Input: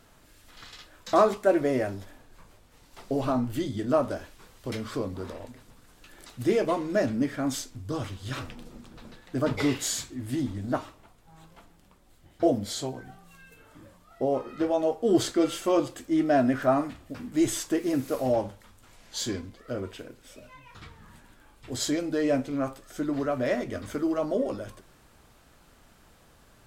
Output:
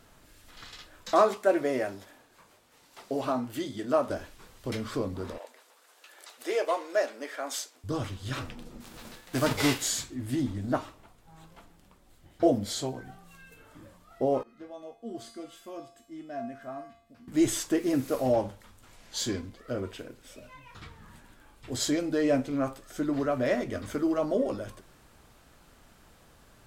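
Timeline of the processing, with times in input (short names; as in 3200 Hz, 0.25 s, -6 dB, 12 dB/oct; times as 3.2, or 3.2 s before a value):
1.11–4.1 HPF 380 Hz 6 dB/oct
5.38–7.84 HPF 470 Hz 24 dB/oct
8.8–9.81 spectral whitening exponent 0.6
14.43–17.28 resonator 230 Hz, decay 0.56 s, harmonics odd, mix 90%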